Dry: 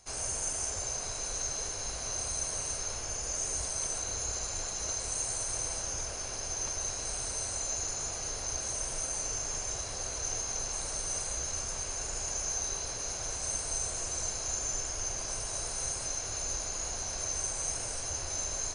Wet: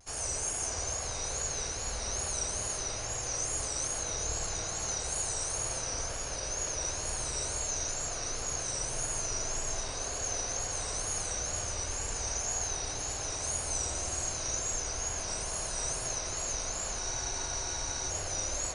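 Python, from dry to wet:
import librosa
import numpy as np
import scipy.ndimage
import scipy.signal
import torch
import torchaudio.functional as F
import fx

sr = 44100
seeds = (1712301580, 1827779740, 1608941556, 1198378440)

y = fx.wow_flutter(x, sr, seeds[0], rate_hz=2.1, depth_cents=120.0)
y = fx.rev_spring(y, sr, rt60_s=3.9, pass_ms=(53,), chirp_ms=40, drr_db=0.5)
y = fx.spec_freeze(y, sr, seeds[1], at_s=17.01, hold_s=1.1)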